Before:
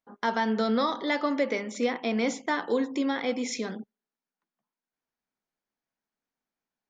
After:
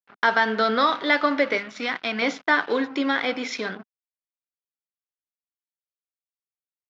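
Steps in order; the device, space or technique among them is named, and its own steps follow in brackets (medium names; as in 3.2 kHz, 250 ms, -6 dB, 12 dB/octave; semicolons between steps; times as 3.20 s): 1.58–2.22 s: peaking EQ 490 Hz -8.5 dB 1.2 oct; blown loudspeaker (crossover distortion -45.5 dBFS; cabinet simulation 180–4800 Hz, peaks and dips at 230 Hz -10 dB, 350 Hz -5 dB, 500 Hz -6 dB, 850 Hz -4 dB, 1.5 kHz +6 dB); trim +9 dB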